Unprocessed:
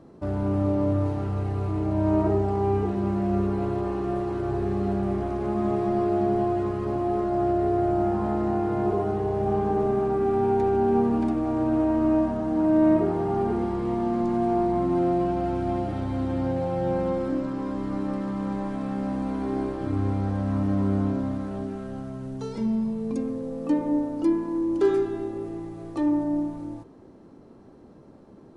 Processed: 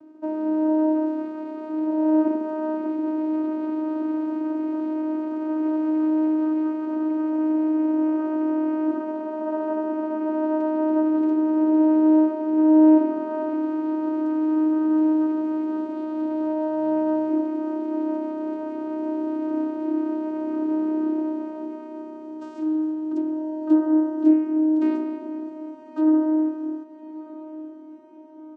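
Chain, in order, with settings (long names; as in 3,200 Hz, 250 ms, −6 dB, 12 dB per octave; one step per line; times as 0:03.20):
comb filter 3.6 ms, depth 81%
channel vocoder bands 8, saw 311 Hz
feedback delay with all-pass diffusion 1,249 ms, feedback 46%, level −14.5 dB
level +1.5 dB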